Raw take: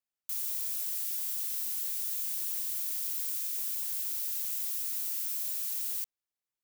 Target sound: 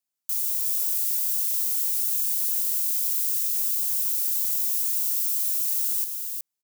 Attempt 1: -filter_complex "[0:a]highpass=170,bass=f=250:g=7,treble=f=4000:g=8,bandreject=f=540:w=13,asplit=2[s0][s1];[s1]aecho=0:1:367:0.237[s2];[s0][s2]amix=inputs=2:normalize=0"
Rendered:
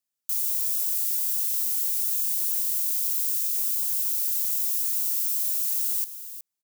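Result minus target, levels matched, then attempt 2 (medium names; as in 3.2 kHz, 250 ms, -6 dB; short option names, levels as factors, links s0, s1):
echo-to-direct -7 dB
-filter_complex "[0:a]highpass=170,bass=f=250:g=7,treble=f=4000:g=8,bandreject=f=540:w=13,asplit=2[s0][s1];[s1]aecho=0:1:367:0.531[s2];[s0][s2]amix=inputs=2:normalize=0"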